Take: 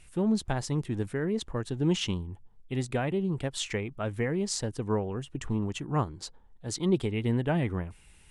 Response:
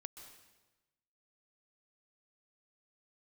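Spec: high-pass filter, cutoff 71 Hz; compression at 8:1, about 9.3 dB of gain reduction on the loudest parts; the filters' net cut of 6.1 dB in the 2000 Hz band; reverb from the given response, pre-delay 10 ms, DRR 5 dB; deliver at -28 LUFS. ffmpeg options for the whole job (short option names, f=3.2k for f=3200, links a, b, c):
-filter_complex "[0:a]highpass=71,equalizer=f=2k:t=o:g=-8,acompressor=threshold=-30dB:ratio=8,asplit=2[a][b];[1:a]atrim=start_sample=2205,adelay=10[c];[b][c]afir=irnorm=-1:irlink=0,volume=0dB[d];[a][d]amix=inputs=2:normalize=0,volume=7dB"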